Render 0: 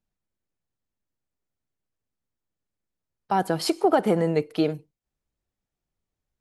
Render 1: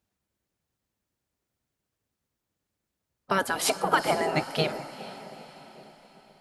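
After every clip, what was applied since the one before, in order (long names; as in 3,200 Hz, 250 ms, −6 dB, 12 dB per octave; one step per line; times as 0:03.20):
feedback delay with all-pass diffusion 451 ms, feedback 51%, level −15.5 dB
gate on every frequency bin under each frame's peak −10 dB weak
level +7 dB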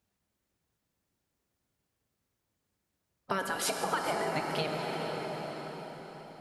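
dense smooth reverb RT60 4.5 s, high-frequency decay 0.6×, DRR 3.5 dB
downward compressor 2.5 to 1, threshold −32 dBFS, peak gain reduction 10 dB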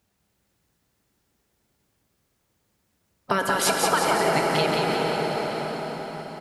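repeating echo 179 ms, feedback 56%, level −4 dB
level +8.5 dB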